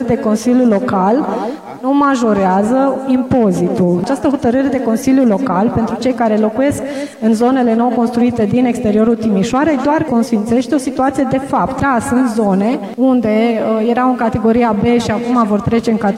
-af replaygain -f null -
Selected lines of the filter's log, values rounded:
track_gain = -4.8 dB
track_peak = 0.485